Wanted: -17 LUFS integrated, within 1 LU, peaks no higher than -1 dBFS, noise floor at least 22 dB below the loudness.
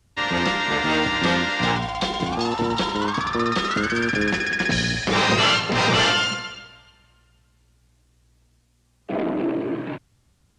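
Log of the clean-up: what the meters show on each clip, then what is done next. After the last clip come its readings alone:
loudness -21.5 LUFS; peak level -7.5 dBFS; loudness target -17.0 LUFS
-> trim +4.5 dB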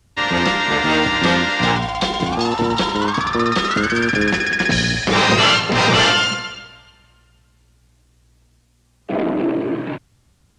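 loudness -17.0 LUFS; peak level -3.0 dBFS; noise floor -59 dBFS

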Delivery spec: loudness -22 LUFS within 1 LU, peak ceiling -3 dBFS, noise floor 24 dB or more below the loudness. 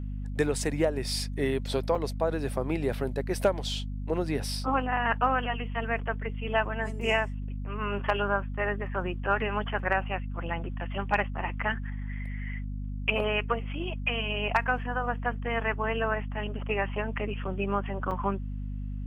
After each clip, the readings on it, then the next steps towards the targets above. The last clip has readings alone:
dropouts 2; longest dropout 4.9 ms; hum 50 Hz; highest harmonic 250 Hz; hum level -32 dBFS; loudness -30.0 LUFS; peak level -11.5 dBFS; loudness target -22.0 LUFS
-> interpolate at 1.95/18.11 s, 4.9 ms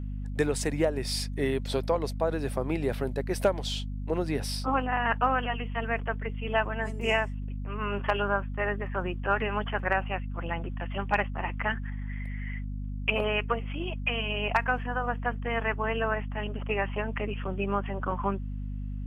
dropouts 0; hum 50 Hz; highest harmonic 250 Hz; hum level -32 dBFS
-> hum notches 50/100/150/200/250 Hz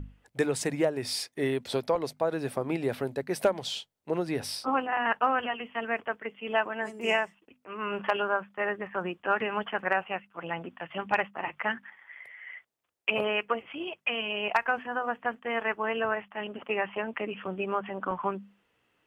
hum not found; loudness -30.5 LUFS; peak level -12.0 dBFS; loudness target -22.0 LUFS
-> trim +8.5 dB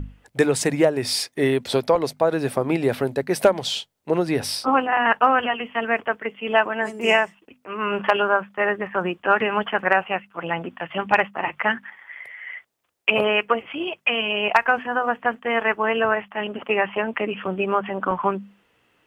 loudness -22.0 LUFS; peak level -3.5 dBFS; noise floor -65 dBFS

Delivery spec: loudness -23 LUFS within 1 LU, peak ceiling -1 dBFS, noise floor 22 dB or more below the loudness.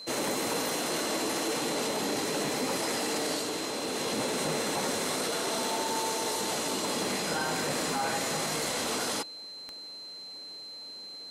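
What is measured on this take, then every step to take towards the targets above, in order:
clicks found 6; steady tone 4.1 kHz; tone level -41 dBFS; loudness -30.0 LUFS; peak level -18.5 dBFS; loudness target -23.0 LUFS
-> de-click; band-stop 4.1 kHz, Q 30; trim +7 dB

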